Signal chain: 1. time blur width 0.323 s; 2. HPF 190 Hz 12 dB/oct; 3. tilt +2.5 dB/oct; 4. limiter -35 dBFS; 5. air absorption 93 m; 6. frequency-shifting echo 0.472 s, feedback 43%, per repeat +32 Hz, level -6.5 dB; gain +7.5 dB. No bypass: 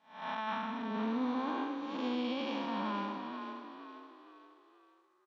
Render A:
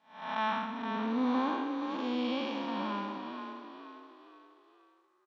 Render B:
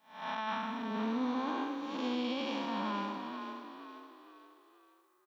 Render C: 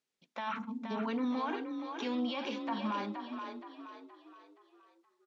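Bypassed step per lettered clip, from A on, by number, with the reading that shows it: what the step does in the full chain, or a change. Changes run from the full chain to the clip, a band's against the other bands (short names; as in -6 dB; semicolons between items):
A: 4, crest factor change +2.5 dB; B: 5, 4 kHz band +1.5 dB; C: 1, crest factor change +2.0 dB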